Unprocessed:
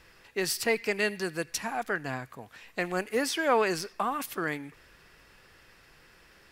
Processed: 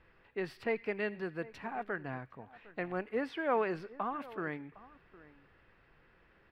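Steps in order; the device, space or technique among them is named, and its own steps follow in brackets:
shout across a valley (high-frequency loss of the air 470 metres; slap from a distant wall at 130 metres, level −19 dB)
level −4.5 dB

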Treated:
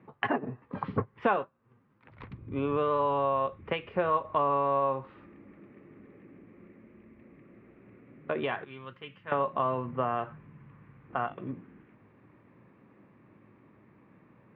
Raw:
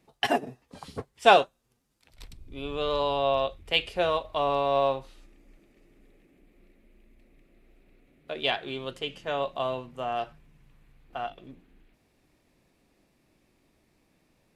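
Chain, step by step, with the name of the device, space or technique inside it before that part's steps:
0:08.64–0:09.32: guitar amp tone stack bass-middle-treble 5-5-5
bass amplifier (downward compressor 4 to 1, threshold −34 dBFS, peak gain reduction 18 dB; loudspeaker in its box 77–2,000 Hz, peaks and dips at 78 Hz −8 dB, 110 Hz +7 dB, 200 Hz +4 dB, 700 Hz −7 dB, 1,100 Hz +6 dB)
level +9 dB

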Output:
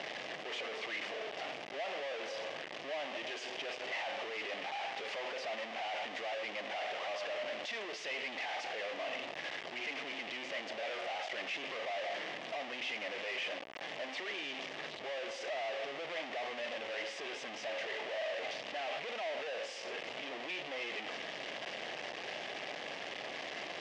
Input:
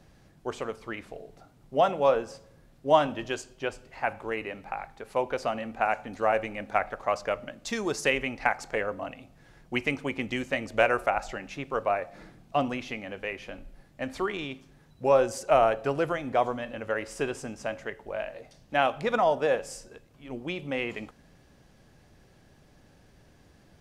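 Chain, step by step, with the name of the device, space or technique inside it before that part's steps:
home computer beeper (sign of each sample alone; loudspeaker in its box 560–4,600 Hz, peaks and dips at 640 Hz +4 dB, 970 Hz −5 dB, 1,400 Hz −8 dB, 2,000 Hz +4 dB, 2,900 Hz +4 dB, 4,200 Hz −5 dB)
level −7 dB

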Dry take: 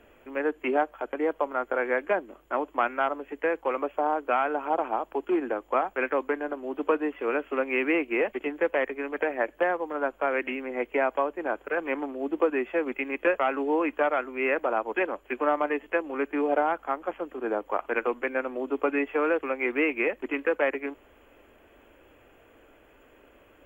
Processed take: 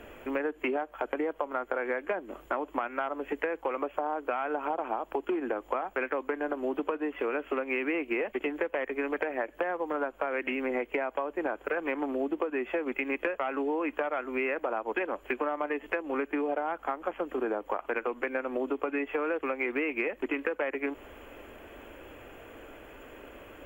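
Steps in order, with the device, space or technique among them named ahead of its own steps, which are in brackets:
serial compression, peaks first (downward compressor, threshold −33 dBFS, peak gain reduction 14 dB; downward compressor 2 to 1, threshold −38 dBFS, peak gain reduction 5 dB)
level +8.5 dB

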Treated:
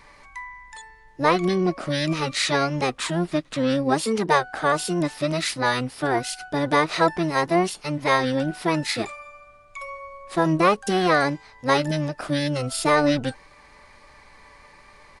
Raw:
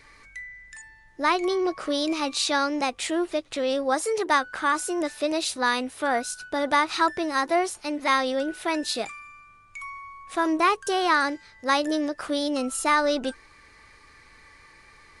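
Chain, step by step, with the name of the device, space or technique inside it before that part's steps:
octave pedal (pitch-shifted copies added −12 semitones −1 dB)

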